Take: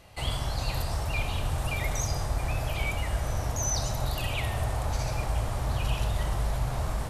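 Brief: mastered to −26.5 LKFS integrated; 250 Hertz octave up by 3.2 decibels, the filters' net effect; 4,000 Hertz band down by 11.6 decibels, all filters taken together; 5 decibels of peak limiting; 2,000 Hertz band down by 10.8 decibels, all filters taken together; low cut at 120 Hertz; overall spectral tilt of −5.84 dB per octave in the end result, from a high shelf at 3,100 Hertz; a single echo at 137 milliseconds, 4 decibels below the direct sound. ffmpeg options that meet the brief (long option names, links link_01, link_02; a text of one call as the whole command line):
ffmpeg -i in.wav -af "highpass=120,equalizer=frequency=250:width_type=o:gain=6,equalizer=frequency=2000:width_type=o:gain=-9,highshelf=frequency=3100:gain=-6,equalizer=frequency=4000:width_type=o:gain=-7.5,alimiter=level_in=2.5dB:limit=-24dB:level=0:latency=1,volume=-2.5dB,aecho=1:1:137:0.631,volume=8.5dB" out.wav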